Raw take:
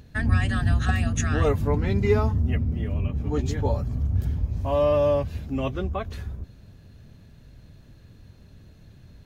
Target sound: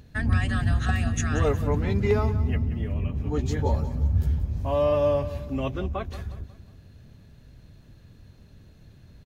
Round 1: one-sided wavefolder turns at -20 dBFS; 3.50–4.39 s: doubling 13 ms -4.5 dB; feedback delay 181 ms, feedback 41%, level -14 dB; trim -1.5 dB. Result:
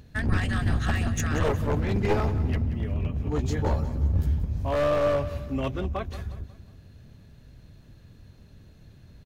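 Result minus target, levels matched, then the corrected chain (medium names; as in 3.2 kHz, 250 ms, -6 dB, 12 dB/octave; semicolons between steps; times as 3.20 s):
one-sided wavefolder: distortion +24 dB
one-sided wavefolder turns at -11.5 dBFS; 3.50–4.39 s: doubling 13 ms -4.5 dB; feedback delay 181 ms, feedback 41%, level -14 dB; trim -1.5 dB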